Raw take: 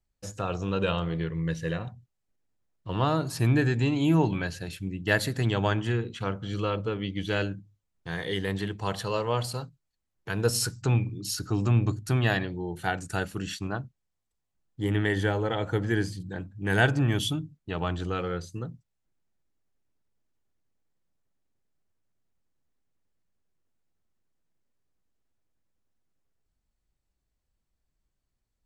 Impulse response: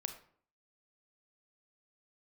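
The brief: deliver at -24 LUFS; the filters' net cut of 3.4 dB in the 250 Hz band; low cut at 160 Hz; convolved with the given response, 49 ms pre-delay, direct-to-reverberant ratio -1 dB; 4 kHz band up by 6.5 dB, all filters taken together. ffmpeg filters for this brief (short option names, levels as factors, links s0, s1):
-filter_complex "[0:a]highpass=160,equalizer=f=250:t=o:g=-3.5,equalizer=f=4000:t=o:g=8.5,asplit=2[s0][s1];[1:a]atrim=start_sample=2205,adelay=49[s2];[s1][s2]afir=irnorm=-1:irlink=0,volume=1.26[s3];[s0][s3]amix=inputs=2:normalize=0,volume=1.26"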